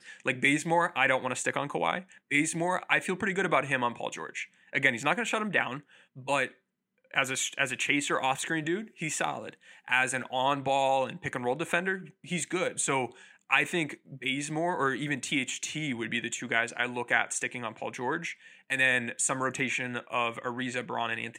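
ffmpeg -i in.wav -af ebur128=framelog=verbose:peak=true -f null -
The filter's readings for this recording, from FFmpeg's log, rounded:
Integrated loudness:
  I:         -29.3 LUFS
  Threshold: -39.4 LUFS
Loudness range:
  LRA:         2.4 LU
  Threshold: -49.6 LUFS
  LRA low:   -30.5 LUFS
  LRA high:  -28.2 LUFS
True peak:
  Peak:       -7.6 dBFS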